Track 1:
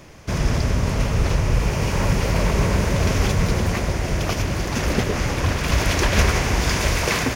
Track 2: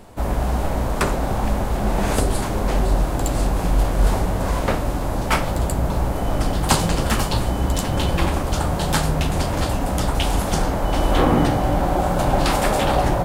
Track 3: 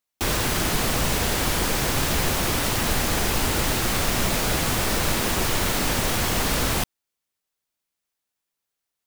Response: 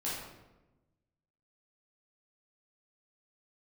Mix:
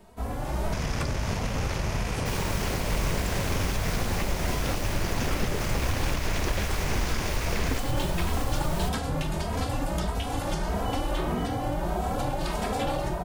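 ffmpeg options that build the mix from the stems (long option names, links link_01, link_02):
-filter_complex "[0:a]aeval=exprs='0.668*(cos(1*acos(clip(val(0)/0.668,-1,1)))-cos(1*PI/2))+0.0266*(cos(8*acos(clip(val(0)/0.668,-1,1)))-cos(8*PI/2))':channel_layout=same,adelay=450,volume=1dB[link_01];[1:a]dynaudnorm=framelen=360:gausssize=3:maxgain=11.5dB,asplit=2[link_02][link_03];[link_03]adelay=2.8,afreqshift=1.6[link_04];[link_02][link_04]amix=inputs=2:normalize=1,volume=-6.5dB[link_05];[2:a]asubboost=boost=7:cutoff=57,acompressor=threshold=-13dB:ratio=6,adelay=2050,volume=-12.5dB[link_06];[link_01][link_05]amix=inputs=2:normalize=0,acrossover=split=840|2400|6300[link_07][link_08][link_09][link_10];[link_07]acompressor=threshold=-23dB:ratio=4[link_11];[link_08]acompressor=threshold=-35dB:ratio=4[link_12];[link_09]acompressor=threshold=-37dB:ratio=4[link_13];[link_10]acompressor=threshold=-45dB:ratio=4[link_14];[link_11][link_12][link_13][link_14]amix=inputs=4:normalize=0,alimiter=limit=-18dB:level=0:latency=1:release=257,volume=0dB[link_15];[link_06][link_15]amix=inputs=2:normalize=0"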